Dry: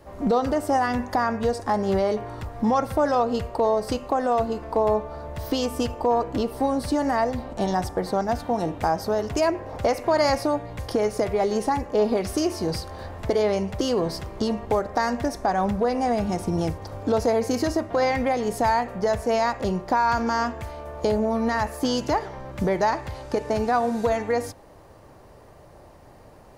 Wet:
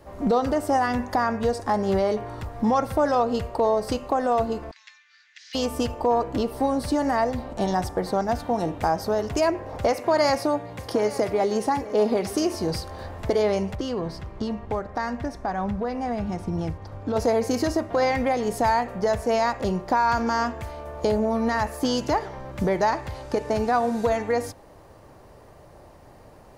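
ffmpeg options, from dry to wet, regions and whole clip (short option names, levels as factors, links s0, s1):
-filter_complex "[0:a]asettb=1/sr,asplit=3[s0][s1][s2];[s0]atrim=end=4.714[s3];[s1]atrim=start=4.71:end=5.55,asetpts=PTS-STARTPTS,afade=t=in:d=0.004:c=qsin,afade=t=out:st=0.836:d=0.004:c=qsin,asuperpass=centerf=3500:order=12:qfactor=0.67,aeval=exprs='clip(val(0),-1,0.0355)':c=same[s4];[s2]atrim=start=5.546[s5];[s3][s4]acrossfade=d=0.004:c1=hsin:c2=qsin[s6];[s6][s5]acrossfade=d=0.004:c1=qsin:c2=hsin,asettb=1/sr,asplit=3[s7][s8][s9];[s7]atrim=end=9.924[s10];[s8]atrim=start=9.92:end=12.55,asetpts=PTS-STARTPTS,afade=t=in:d=0.004:c=qsin,afade=t=out:st=2.626:d=0.004:c=qsin,highpass=110,aecho=1:1:863:0.158,atrim=end_sample=115983[s11];[s9]atrim=start=12.546[s12];[s10][s11]acrossfade=d=0.004:c1=hsin:c2=qsin[s13];[s13][s12]acrossfade=d=0.004:c1=qsin:c2=hsin,asettb=1/sr,asplit=3[s14][s15][s16];[s14]atrim=end=13.754[s17];[s15]atrim=start=13.75:end=17.16,asetpts=PTS-STARTPTS,afade=t=in:d=0.004:c=qsin,afade=t=out:st=3.406:d=0.004:c=qsin,lowpass=f=2000:p=1,equalizer=f=500:w=0.61:g=-6[s18];[s16]atrim=start=17.156[s19];[s17][s18]acrossfade=d=0.004:c1=hsin:c2=qsin[s20];[s20][s19]acrossfade=d=0.004:c1=qsin:c2=hsin"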